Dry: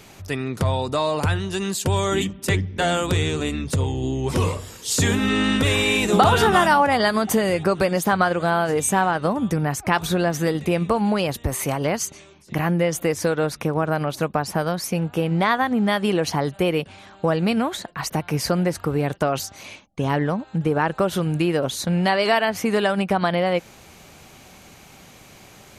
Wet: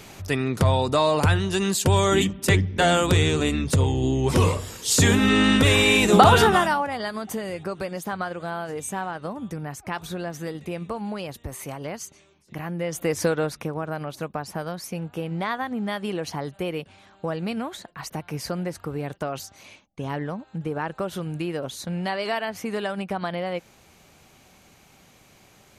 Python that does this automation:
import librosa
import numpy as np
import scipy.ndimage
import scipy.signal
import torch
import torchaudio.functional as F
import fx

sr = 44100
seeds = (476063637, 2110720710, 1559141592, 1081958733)

y = fx.gain(x, sr, db=fx.line((6.37, 2.0), (6.91, -10.5), (12.71, -10.5), (13.21, 0.0), (13.78, -8.0)))